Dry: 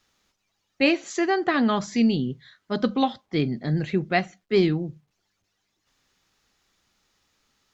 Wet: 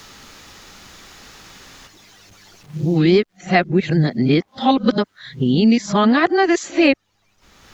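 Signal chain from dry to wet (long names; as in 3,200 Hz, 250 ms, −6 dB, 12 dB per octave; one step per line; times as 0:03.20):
played backwards from end to start
multiband upward and downward compressor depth 70%
level +7 dB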